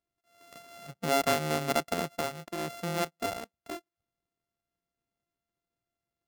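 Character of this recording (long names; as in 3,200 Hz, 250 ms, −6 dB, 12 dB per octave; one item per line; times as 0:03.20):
a buzz of ramps at a fixed pitch in blocks of 64 samples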